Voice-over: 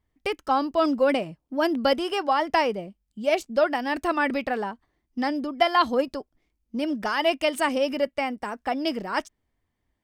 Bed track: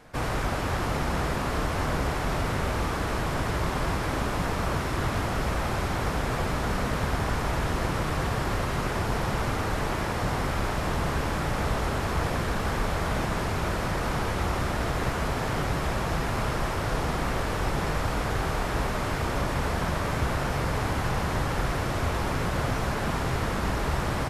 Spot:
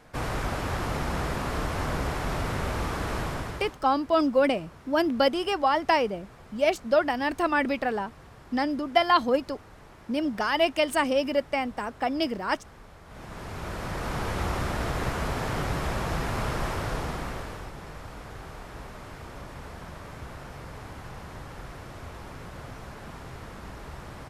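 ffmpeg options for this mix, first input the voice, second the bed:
-filter_complex "[0:a]adelay=3350,volume=0.944[s0];[1:a]volume=8.41,afade=t=out:st=3.21:d=0.57:silence=0.1,afade=t=in:st=13.06:d=1.32:silence=0.0944061,afade=t=out:st=16.72:d=1:silence=0.237137[s1];[s0][s1]amix=inputs=2:normalize=0"

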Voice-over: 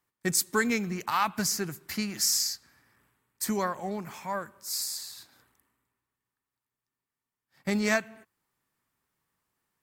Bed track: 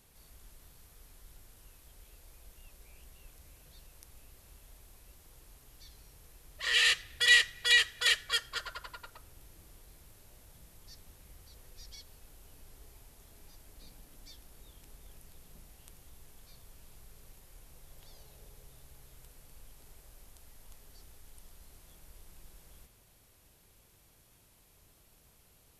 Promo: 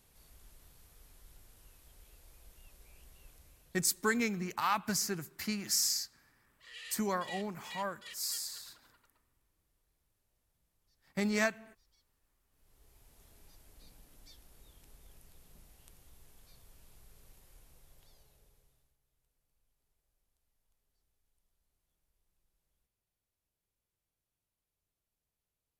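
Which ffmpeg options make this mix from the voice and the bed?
-filter_complex "[0:a]adelay=3500,volume=0.596[s0];[1:a]volume=5.96,afade=t=out:st=3.3:d=0.86:silence=0.1,afade=t=in:st=12.5:d=0.73:silence=0.11885,afade=t=out:st=17.5:d=1.47:silence=0.0794328[s1];[s0][s1]amix=inputs=2:normalize=0"

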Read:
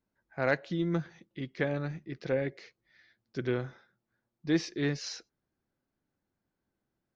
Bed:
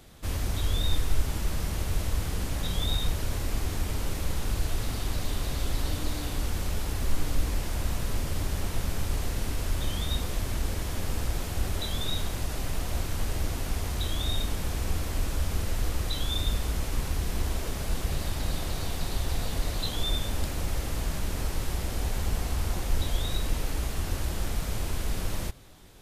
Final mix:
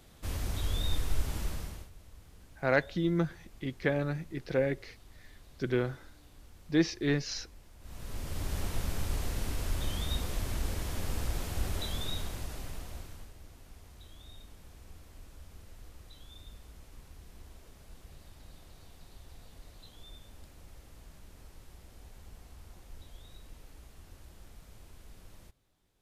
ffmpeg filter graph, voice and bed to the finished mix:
-filter_complex "[0:a]adelay=2250,volume=1.19[s0];[1:a]volume=6.31,afade=t=out:st=1.42:d=0.48:silence=0.1,afade=t=in:st=7.8:d=0.78:silence=0.0891251,afade=t=out:st=11.8:d=1.53:silence=0.11885[s1];[s0][s1]amix=inputs=2:normalize=0"

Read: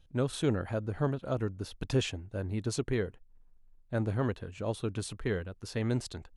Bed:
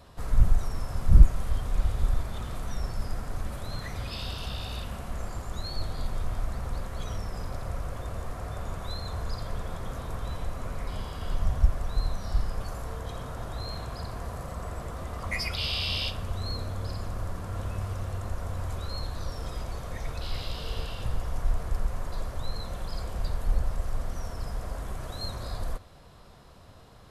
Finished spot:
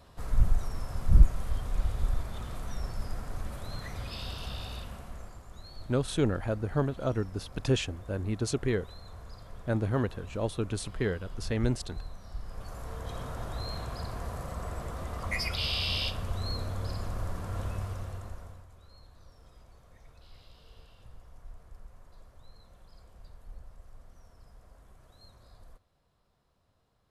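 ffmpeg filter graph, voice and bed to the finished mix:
-filter_complex "[0:a]adelay=5750,volume=1.26[s0];[1:a]volume=2.66,afade=t=out:st=4.61:d=0.79:silence=0.334965,afade=t=in:st=12.4:d=0.8:silence=0.251189,afade=t=out:st=17.63:d=1.03:silence=0.1[s1];[s0][s1]amix=inputs=2:normalize=0"

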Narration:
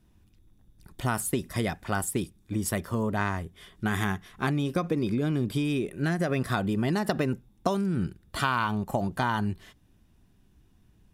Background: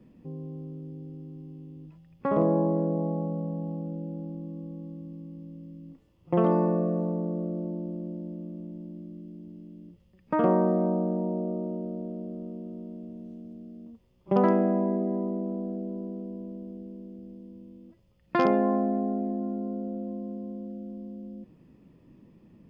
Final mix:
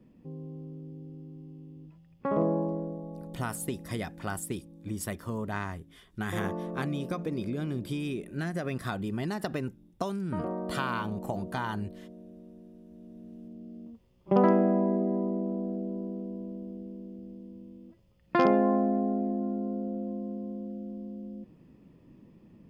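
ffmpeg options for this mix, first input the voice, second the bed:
-filter_complex "[0:a]adelay=2350,volume=0.501[s0];[1:a]volume=2.82,afade=t=out:st=2.41:d=0.61:silence=0.354813,afade=t=in:st=12.87:d=0.89:silence=0.251189[s1];[s0][s1]amix=inputs=2:normalize=0"

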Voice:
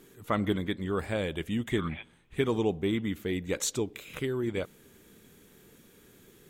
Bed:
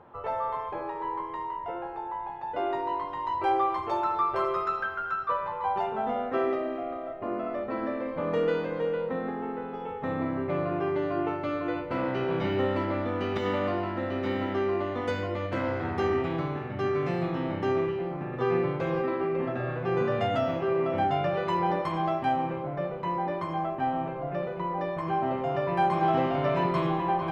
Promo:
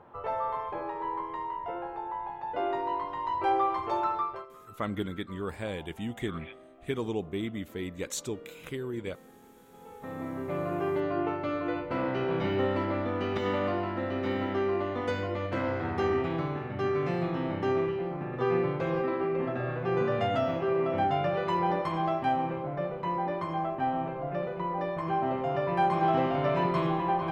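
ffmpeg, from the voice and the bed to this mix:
-filter_complex "[0:a]adelay=4500,volume=0.596[s0];[1:a]volume=10.6,afade=t=out:st=4.08:d=0.38:silence=0.0841395,afade=t=in:st=9.65:d=1.26:silence=0.0841395[s1];[s0][s1]amix=inputs=2:normalize=0"

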